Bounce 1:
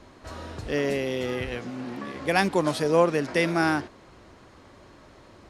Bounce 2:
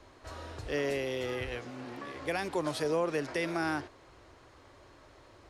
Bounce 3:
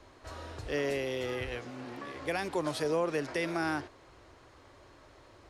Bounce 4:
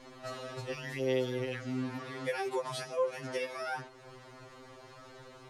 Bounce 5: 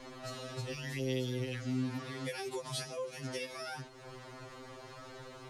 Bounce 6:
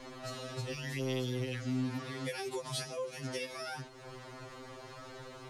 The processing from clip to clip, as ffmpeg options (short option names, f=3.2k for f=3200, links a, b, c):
-filter_complex "[0:a]equalizer=f=200:t=o:w=0.6:g=-12.5,acrossover=split=280[a][b];[b]alimiter=limit=-18dB:level=0:latency=1:release=97[c];[a][c]amix=inputs=2:normalize=0,volume=-4.5dB"
-af anull
-af "acompressor=threshold=-44dB:ratio=2,afftfilt=real='re*2.45*eq(mod(b,6),0)':imag='im*2.45*eq(mod(b,6),0)':win_size=2048:overlap=0.75,volume=7.5dB"
-filter_complex "[0:a]acrossover=split=270|3000[a][b][c];[b]acompressor=threshold=-51dB:ratio=2.5[d];[a][d][c]amix=inputs=3:normalize=0,volume=3.5dB"
-af "volume=28.5dB,asoftclip=hard,volume=-28.5dB,volume=1dB"